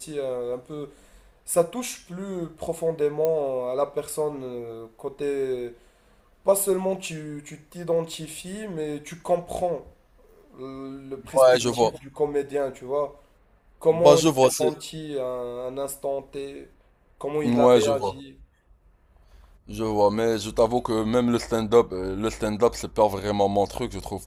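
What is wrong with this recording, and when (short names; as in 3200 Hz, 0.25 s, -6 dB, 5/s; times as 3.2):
3.25 pop -13 dBFS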